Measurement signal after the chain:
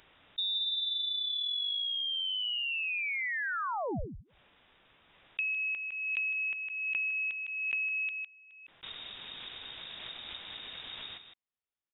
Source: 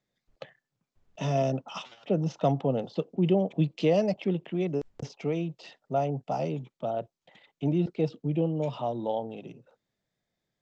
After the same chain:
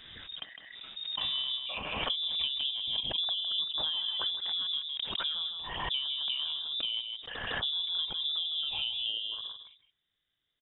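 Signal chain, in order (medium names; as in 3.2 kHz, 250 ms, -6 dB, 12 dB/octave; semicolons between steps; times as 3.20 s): delay 157 ms -9 dB; compression 6:1, threshold -31 dBFS; frequency inversion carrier 3.7 kHz; swell ahead of each attack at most 32 dB/s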